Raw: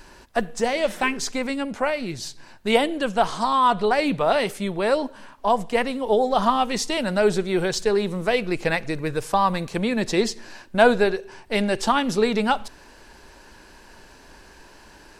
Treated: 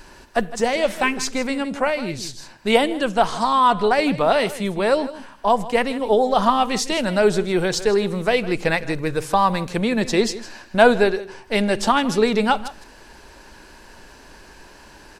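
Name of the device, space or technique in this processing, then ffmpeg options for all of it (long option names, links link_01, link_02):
ducked delay: -filter_complex "[0:a]asplit=3[link_01][link_02][link_03];[link_02]adelay=158,volume=-9dB[link_04];[link_03]apad=whole_len=677174[link_05];[link_04][link_05]sidechaincompress=threshold=-24dB:ratio=8:attack=23:release=863[link_06];[link_01][link_06]amix=inputs=2:normalize=0,volume=2.5dB"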